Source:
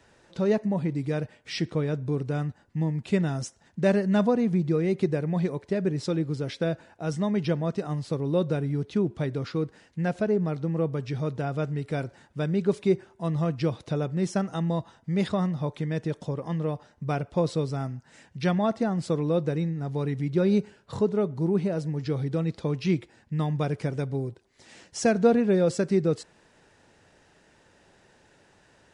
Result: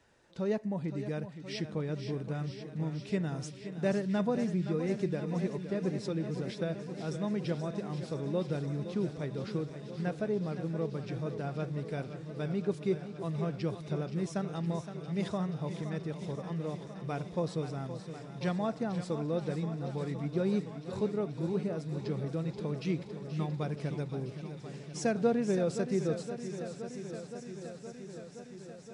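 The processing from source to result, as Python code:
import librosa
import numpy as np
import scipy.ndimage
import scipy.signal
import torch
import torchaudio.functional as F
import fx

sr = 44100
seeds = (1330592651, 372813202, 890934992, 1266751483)

y = fx.echo_wet_highpass(x, sr, ms=480, feedback_pct=83, hz=2900.0, wet_db=-10.0)
y = fx.echo_warbled(y, sr, ms=519, feedback_pct=78, rate_hz=2.8, cents=74, wet_db=-11.0)
y = y * librosa.db_to_amplitude(-8.0)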